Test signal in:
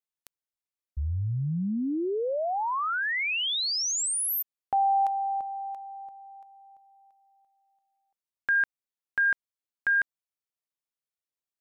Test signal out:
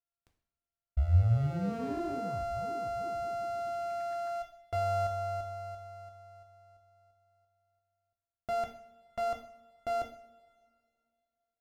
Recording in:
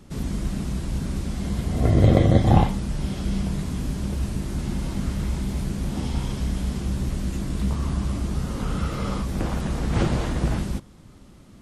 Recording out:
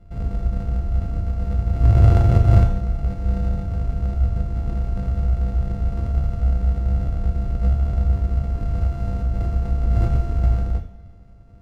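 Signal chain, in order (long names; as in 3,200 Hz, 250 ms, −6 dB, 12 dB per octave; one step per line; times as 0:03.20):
samples sorted by size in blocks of 64 samples
RIAA equalisation playback
coupled-rooms reverb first 0.55 s, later 2.4 s, from −20 dB, DRR 3 dB
level −12.5 dB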